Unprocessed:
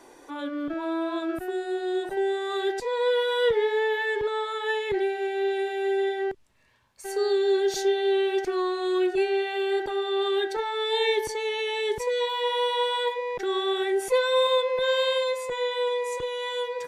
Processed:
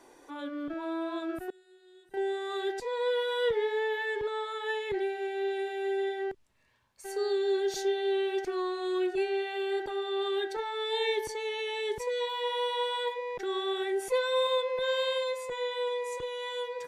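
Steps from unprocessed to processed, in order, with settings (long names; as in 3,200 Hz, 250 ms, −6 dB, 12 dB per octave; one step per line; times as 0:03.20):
0:01.50–0:02.14: guitar amp tone stack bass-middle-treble 6-0-2
level −5.5 dB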